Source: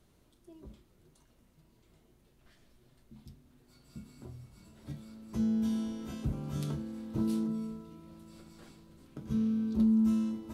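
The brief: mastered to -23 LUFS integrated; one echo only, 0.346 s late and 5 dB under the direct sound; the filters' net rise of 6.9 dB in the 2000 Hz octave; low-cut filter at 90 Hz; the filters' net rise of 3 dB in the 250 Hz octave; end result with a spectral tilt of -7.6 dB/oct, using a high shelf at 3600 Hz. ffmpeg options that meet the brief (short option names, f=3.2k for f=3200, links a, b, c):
-af "highpass=90,equalizer=f=250:t=o:g=3.5,equalizer=f=2k:t=o:g=6.5,highshelf=f=3.6k:g=8.5,aecho=1:1:346:0.562,volume=5.5dB"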